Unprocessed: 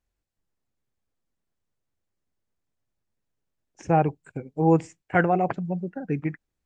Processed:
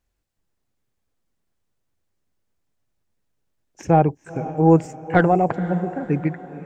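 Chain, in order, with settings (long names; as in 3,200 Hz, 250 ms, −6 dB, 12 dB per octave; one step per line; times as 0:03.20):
stylus tracing distortion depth 0.033 ms
dynamic equaliser 2,600 Hz, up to −6 dB, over −40 dBFS, Q 0.71
feedback delay with all-pass diffusion 495 ms, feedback 43%, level −14 dB
level +5.5 dB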